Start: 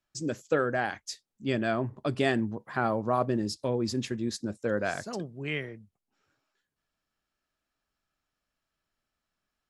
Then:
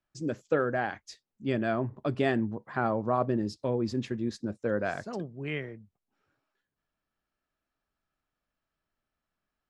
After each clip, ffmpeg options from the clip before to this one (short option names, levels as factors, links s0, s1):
-af "aemphasis=mode=reproduction:type=75kf"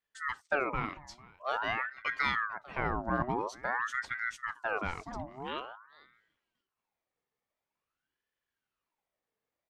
-af "aecho=1:1:448:0.0841,aeval=exprs='val(0)*sin(2*PI*1100*n/s+1100*0.6/0.48*sin(2*PI*0.48*n/s))':c=same,volume=0.841"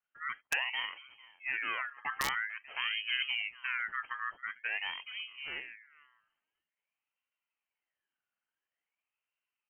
-af "lowpass=f=2700:t=q:w=0.5098,lowpass=f=2700:t=q:w=0.6013,lowpass=f=2700:t=q:w=0.9,lowpass=f=2700:t=q:w=2.563,afreqshift=-3200,aeval=exprs='(mod(8.41*val(0)+1,2)-1)/8.41':c=same,volume=0.75"